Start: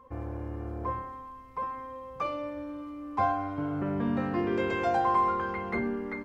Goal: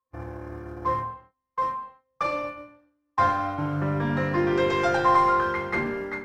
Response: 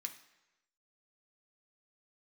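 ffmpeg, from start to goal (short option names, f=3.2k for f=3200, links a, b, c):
-filter_complex "[0:a]agate=range=-40dB:threshold=-35dB:ratio=16:detection=peak,asplit=2[a][b];[b]aeval=exprs='clip(val(0),-1,0.0141)':c=same,volume=-9.5dB[c];[a][c]amix=inputs=2:normalize=0[d];[1:a]atrim=start_sample=2205,afade=t=out:st=0.25:d=0.01,atrim=end_sample=11466,asetrate=31752,aresample=44100[e];[d][e]afir=irnorm=-1:irlink=0,volume=8dB"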